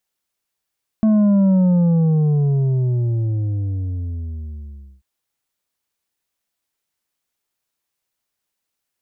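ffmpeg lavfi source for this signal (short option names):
-f lavfi -i "aevalsrc='0.251*clip((3.99-t)/3.51,0,1)*tanh(2*sin(2*PI*220*3.99/log(65/220)*(exp(log(65/220)*t/3.99)-1)))/tanh(2)':d=3.99:s=44100"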